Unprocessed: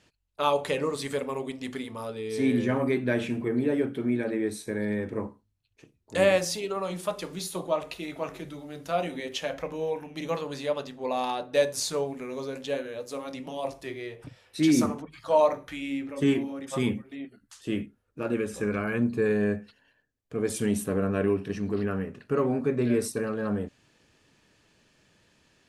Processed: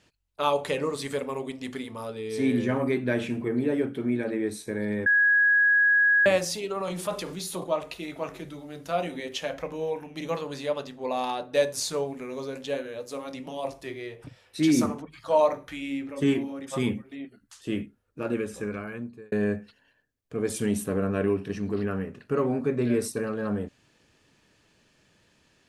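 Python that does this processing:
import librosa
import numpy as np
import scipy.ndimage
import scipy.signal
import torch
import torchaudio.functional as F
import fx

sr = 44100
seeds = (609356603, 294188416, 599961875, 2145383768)

y = fx.transient(x, sr, attack_db=-1, sustain_db=6, at=(6.8, 7.64))
y = fx.edit(y, sr, fx.bleep(start_s=5.06, length_s=1.2, hz=1660.0, db=-17.0),
    fx.fade_out_span(start_s=18.31, length_s=1.01), tone=tone)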